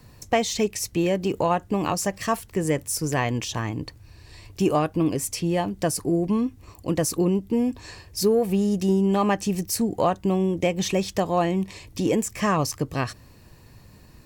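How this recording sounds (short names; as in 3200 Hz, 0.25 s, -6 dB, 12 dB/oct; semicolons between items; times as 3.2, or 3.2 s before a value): noise floor -50 dBFS; spectral tilt -5.0 dB/oct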